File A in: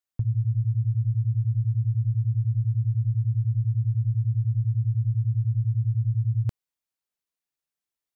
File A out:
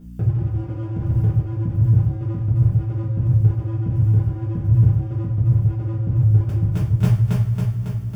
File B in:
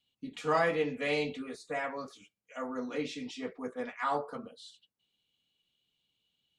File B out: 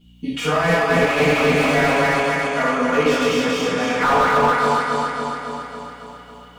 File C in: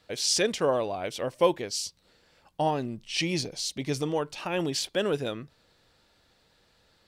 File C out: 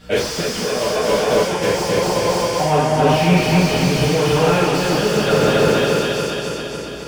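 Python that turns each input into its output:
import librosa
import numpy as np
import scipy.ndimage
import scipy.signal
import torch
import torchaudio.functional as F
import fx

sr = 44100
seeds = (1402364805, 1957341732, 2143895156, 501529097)

y = fx.reverse_delay_fb(x, sr, ms=138, feedback_pct=78, wet_db=-1.0)
y = np.clip(y, -10.0 ** (-21.5 / 20.0), 10.0 ** (-21.5 / 20.0))
y = scipy.signal.sosfilt(scipy.signal.butter(2, 48.0, 'highpass', fs=sr, output='sos'), y)
y = y + 10.0 ** (-20.0 / 20.0) * np.pad(y, (int(250 * sr / 1000.0), 0))[:len(y)]
y = fx.add_hum(y, sr, base_hz=60, snr_db=33)
y = fx.over_compress(y, sr, threshold_db=-29.0, ratio=-0.5)
y = fx.dynamic_eq(y, sr, hz=290.0, q=1.6, threshold_db=-45.0, ratio=4.0, max_db=-7)
y = fx.notch(y, sr, hz=4000.0, q=7.5)
y = fx.rev_double_slope(y, sr, seeds[0], early_s=0.41, late_s=3.9, knee_db=-22, drr_db=-8.0)
y = fx.slew_limit(y, sr, full_power_hz=88.0)
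y = y * 10.0 ** (8.5 / 20.0)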